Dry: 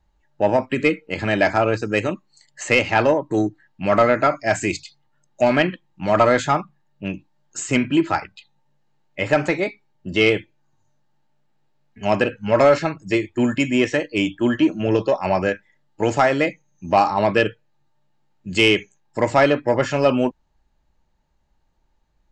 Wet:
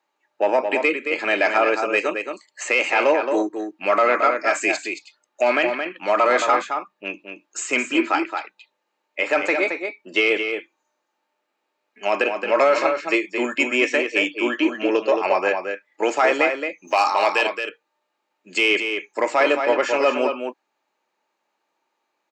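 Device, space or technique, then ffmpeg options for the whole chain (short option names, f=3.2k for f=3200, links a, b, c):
laptop speaker: -filter_complex "[0:a]asettb=1/sr,asplit=3[a][b][c];[a]atrim=end=16.874[d];[b]atrim=start=16.87:end=17.47,asetpts=PTS-STARTPTS,afade=t=in:d=0.004:c=qsin,afade=t=out:st=0.596:d=0.004:c=qsin,aemphasis=mode=production:type=riaa[e];[c]atrim=start=17.466[f];[d][e]acrossfade=d=0.004:c1=hsin:c2=qsin[g];[g][f]acrossfade=d=0.004:c1=qsin:c2=hsin,highpass=f=330:w=0.5412,highpass=f=330:w=1.3066,equalizer=f=1.2k:t=o:w=0.43:g=5,equalizer=f=2.4k:t=o:w=0.32:g=7.5,alimiter=limit=-8dB:level=0:latency=1:release=24,asplit=2[h][i];[i]adelay=221.6,volume=-6dB,highshelf=f=4k:g=-4.99[j];[h][j]amix=inputs=2:normalize=0"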